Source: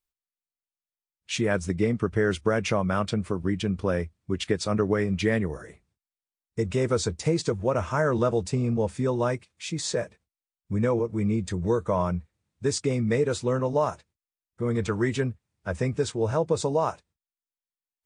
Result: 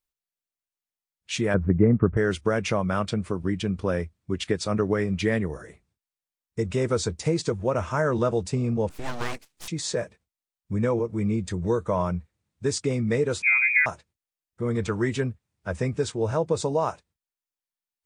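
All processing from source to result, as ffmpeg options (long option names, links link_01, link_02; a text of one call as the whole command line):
ffmpeg -i in.wav -filter_complex "[0:a]asettb=1/sr,asplit=3[link_01][link_02][link_03];[link_01]atrim=end=1.544[link_04];[link_02]atrim=start=1.54:end=2.17,asetpts=PTS-STARTPTS,afade=type=in:duration=0.004:curve=qsin,afade=type=out:start_time=0.626:duration=0.004:curve=qsin,lowpass=frequency=1700:width=0.5412,lowpass=frequency=1700:width=1.3066,lowshelf=frequency=380:gain=8.5[link_05];[link_03]atrim=start=2.166[link_06];[link_04][link_05]acrossfade=duration=0.004:curve1=hsin:curve2=qsin[link_07];[link_07][link_06]acrossfade=duration=0.004:curve1=qsin:curve2=hsin,asettb=1/sr,asplit=3[link_08][link_09][link_10];[link_08]atrim=end=8.894[link_11];[link_09]atrim=start=8.89:end=9.68,asetpts=PTS-STARTPTS,afade=type=in:duration=0.004:curve=qsin,afade=type=out:start_time=0.786:duration=0.004:curve=qsin,acrossover=split=430|1500[link_12][link_13][link_14];[link_12]acompressor=threshold=-33dB:ratio=4[link_15];[link_13]acompressor=threshold=-27dB:ratio=4[link_16];[link_14]acompressor=threshold=-39dB:ratio=4[link_17];[link_15][link_16][link_17]amix=inputs=3:normalize=0,aeval=exprs='abs(val(0))':channel_layout=same,adynamicequalizer=threshold=0.00355:dfrequency=2100:dqfactor=0.7:tfrequency=2100:tqfactor=0.7:attack=5:release=100:ratio=0.375:range=3:mode=boostabove:tftype=highshelf[link_18];[link_10]atrim=start=9.676[link_19];[link_11][link_18]acrossfade=duration=0.004:curve1=hsin:curve2=qsin[link_20];[link_20][link_19]acrossfade=duration=0.004:curve1=qsin:curve2=hsin,asettb=1/sr,asplit=3[link_21][link_22][link_23];[link_21]atrim=end=13.424[link_24];[link_22]atrim=start=13.42:end=13.86,asetpts=PTS-STARTPTS,afade=type=in:duration=0.004:curve=qsin,afade=type=out:start_time=0.436:duration=0.004:curve=qsin,tiltshelf=frequency=810:gain=6.5,lowpass=frequency=2200:width_type=q:width=0.5098,lowpass=frequency=2200:width_type=q:width=0.6013,lowpass=frequency=2200:width_type=q:width=0.9,lowpass=frequency=2200:width_type=q:width=2.563,afreqshift=-2600[link_25];[link_23]atrim=start=13.856[link_26];[link_24][link_25]acrossfade=duration=0.004:curve1=hsin:curve2=qsin[link_27];[link_27][link_26]acrossfade=duration=0.004:curve1=qsin:curve2=hsin" out.wav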